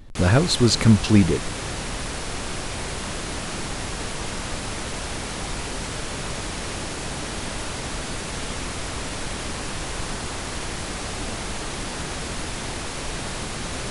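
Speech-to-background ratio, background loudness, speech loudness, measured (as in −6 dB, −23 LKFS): 11.0 dB, −29.5 LKFS, −18.5 LKFS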